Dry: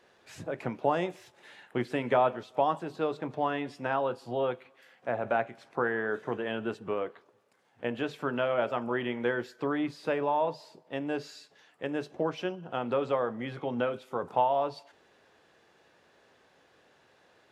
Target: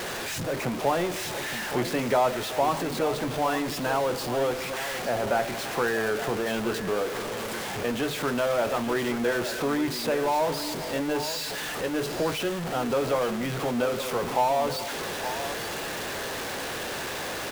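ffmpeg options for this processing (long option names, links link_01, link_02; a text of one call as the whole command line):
ffmpeg -i in.wav -af "aeval=exprs='val(0)+0.5*0.0422*sgn(val(0))':channel_layout=same,aecho=1:1:869:0.282" out.wav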